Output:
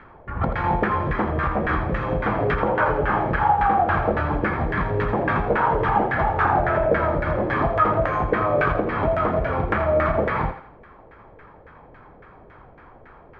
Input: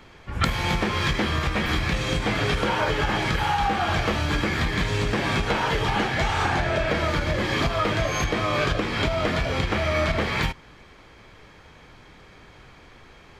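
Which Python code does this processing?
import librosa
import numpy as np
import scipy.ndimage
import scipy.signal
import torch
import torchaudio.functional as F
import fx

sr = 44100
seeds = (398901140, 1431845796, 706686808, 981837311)

p1 = fx.filter_lfo_lowpass(x, sr, shape='saw_down', hz=3.6, low_hz=490.0, high_hz=1700.0, q=2.8)
y = p1 + fx.echo_thinned(p1, sr, ms=83, feedback_pct=37, hz=420.0, wet_db=-8.5, dry=0)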